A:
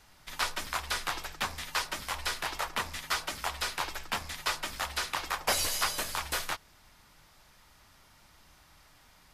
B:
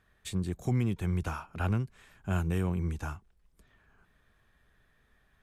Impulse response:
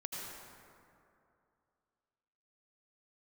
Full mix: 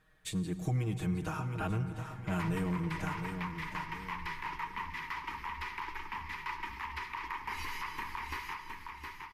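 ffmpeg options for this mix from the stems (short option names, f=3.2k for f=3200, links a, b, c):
-filter_complex "[0:a]firequalizer=gain_entry='entry(390,0);entry(610,-30);entry(930,10);entry(1400,-7);entry(2000,6);entry(3600,-12);entry(5600,-14);entry(8000,-23);entry(13000,-15)':delay=0.05:min_phase=1,alimiter=level_in=2.5dB:limit=-24dB:level=0:latency=1:release=161,volume=-2.5dB,adelay=2000,volume=-3dB,asplit=3[a][b][c];[b]volume=-10.5dB[d];[c]volume=-4dB[e];[1:a]aecho=1:1:6.4:0.92,volume=-4dB,asplit=3[f][g][h];[g]volume=-8dB[i];[h]volume=-8dB[j];[2:a]atrim=start_sample=2205[k];[d][i]amix=inputs=2:normalize=0[l];[l][k]afir=irnorm=-1:irlink=0[m];[e][j]amix=inputs=2:normalize=0,aecho=0:1:714|1428|2142|2856|3570:1|0.34|0.116|0.0393|0.0134[n];[a][f][m][n]amix=inputs=4:normalize=0,acompressor=threshold=-35dB:ratio=1.5"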